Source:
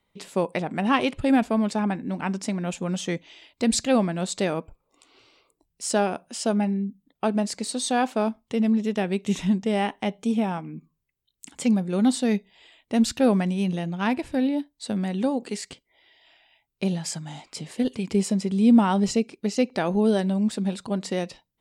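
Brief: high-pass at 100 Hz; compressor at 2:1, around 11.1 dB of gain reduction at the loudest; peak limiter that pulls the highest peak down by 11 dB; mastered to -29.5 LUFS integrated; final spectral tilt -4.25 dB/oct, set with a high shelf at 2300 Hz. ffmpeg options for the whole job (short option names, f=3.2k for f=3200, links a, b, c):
-af "highpass=100,highshelf=f=2.3k:g=8,acompressor=threshold=-34dB:ratio=2,volume=4.5dB,alimiter=limit=-19.5dB:level=0:latency=1"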